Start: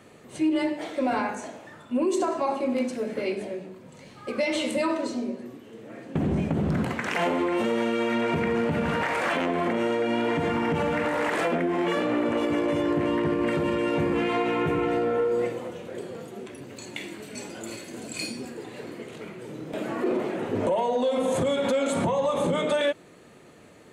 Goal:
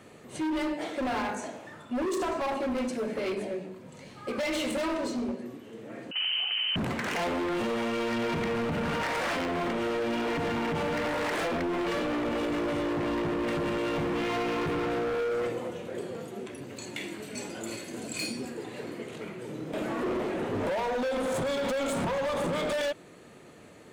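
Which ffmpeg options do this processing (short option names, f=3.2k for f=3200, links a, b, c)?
-filter_complex "[0:a]asoftclip=type=hard:threshold=-27.5dB,asettb=1/sr,asplit=3[a][b][c];[a]atrim=end=6.114[d];[b]atrim=start=6.11:end=6.76,asetpts=PTS-STARTPTS,afade=t=in:d=0.004:c=qsin,afade=t=out:st=0.646:d=0.004:c=qsin,lowpass=f=2.7k:t=q:w=0.5098,lowpass=f=2.7k:t=q:w=0.6013,lowpass=f=2.7k:t=q:w=0.9,lowpass=f=2.7k:t=q:w=2.563,afreqshift=-3200[e];[c]atrim=start=6.756[f];[d][e]acrossfade=d=0.004:c1=hsin:c2=qsin[g];[g][f]acrossfade=d=0.004:c1=qsin:c2=hsin"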